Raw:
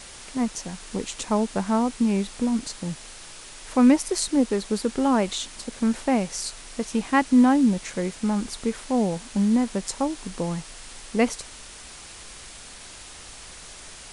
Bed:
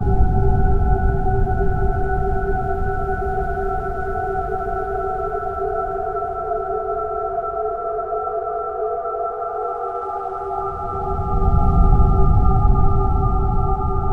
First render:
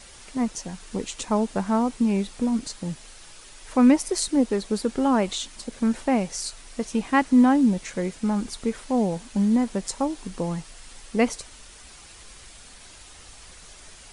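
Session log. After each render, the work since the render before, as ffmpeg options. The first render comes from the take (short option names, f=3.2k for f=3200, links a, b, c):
-af "afftdn=nr=6:nf=-43"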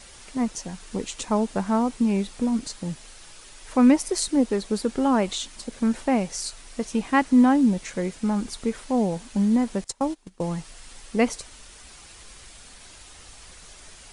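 -filter_complex "[0:a]asettb=1/sr,asplit=3[a][b][c];[a]atrim=end=9.844[d];[b]atrim=start=9.84:end=10.55,asetpts=PTS-STARTPTS,afade=t=in:d=0.004:c=qsin,afade=t=out:st=0.706:d=0.004:c=qsin,agate=range=-20dB:threshold=-31dB:ratio=16:release=100:detection=peak[e];[c]atrim=start=10.546[f];[d][e]acrossfade=d=0.004:c1=hsin:c2=qsin[g];[g][f]acrossfade=d=0.004:c1=qsin:c2=hsin"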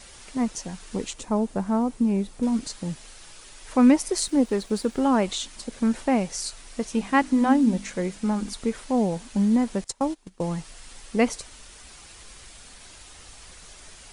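-filter_complex "[0:a]asettb=1/sr,asplit=3[a][b][c];[a]atrim=end=1.134[d];[b]atrim=start=1.13:end=2.43,asetpts=PTS-STARTPTS,afade=t=in:d=0.004:c=qsin,afade=t=out:st=1.296:d=0.004:c=qsin,equalizer=f=3.5k:w=0.31:g=-8[e];[c]atrim=start=2.426[f];[d][e]acrossfade=d=0.004:c1=hsin:c2=qsin[g];[g][f]acrossfade=d=0.004:c1=qsin:c2=hsin,asettb=1/sr,asplit=3[h][i][j];[h]atrim=end=4.184[k];[i]atrim=start=4.18:end=5.03,asetpts=PTS-STARTPTS,afade=t=in:d=0.004:c=qsin,afade=t=out:st=0.846:d=0.004:c=qsin,aeval=exprs='sgn(val(0))*max(abs(val(0))-0.00224,0)':c=same[l];[j]atrim=start=5.026[m];[k][l]acrossfade=d=0.004:c1=hsin:c2=qsin[n];[n][m]acrossfade=d=0.004:c1=qsin:c2=hsin,asettb=1/sr,asplit=3[o][p][q];[o]atrim=end=6.924[r];[p]atrim=start=6.92:end=8.53,asetpts=PTS-STARTPTS,afade=t=in:d=0.004:c=qsin,afade=t=out:st=1.606:d=0.004:c=qsin,bandreject=f=50:t=h:w=6,bandreject=f=100:t=h:w=6,bandreject=f=150:t=h:w=6,bandreject=f=200:t=h:w=6,bandreject=f=250:t=h:w=6,bandreject=f=300:t=h:w=6[s];[q]atrim=start=8.526[t];[r][s]acrossfade=d=0.004:c1=hsin:c2=qsin[u];[u][t]acrossfade=d=0.004:c1=qsin:c2=hsin"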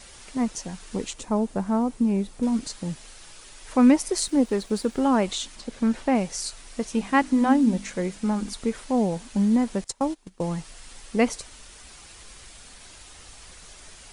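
-filter_complex "[0:a]asettb=1/sr,asplit=3[a][b][c];[a]atrim=end=5.554[d];[b]atrim=start=5.55:end=6.15,asetpts=PTS-STARTPTS,afade=t=in:d=0.004:c=qsin,afade=t=out:st=0.596:d=0.004:c=qsin,acrossover=split=5600[e][f];[f]acompressor=threshold=-52dB:ratio=4:attack=1:release=60[g];[e][g]amix=inputs=2:normalize=0[h];[c]atrim=start=6.146[i];[d][h]acrossfade=d=0.004:c1=hsin:c2=qsin[j];[j][i]acrossfade=d=0.004:c1=qsin:c2=hsin"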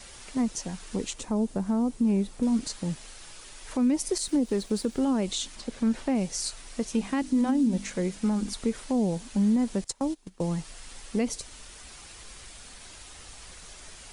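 -filter_complex "[0:a]acrossover=split=480|3000[a][b][c];[b]acompressor=threshold=-41dB:ratio=2[d];[a][d][c]amix=inputs=3:normalize=0,alimiter=limit=-17.5dB:level=0:latency=1:release=76"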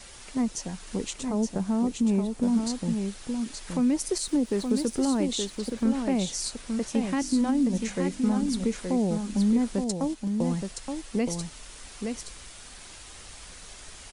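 -af "aecho=1:1:872:0.531"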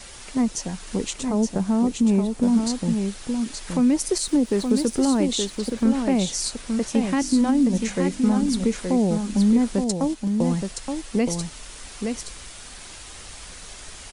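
-af "volume=5dB"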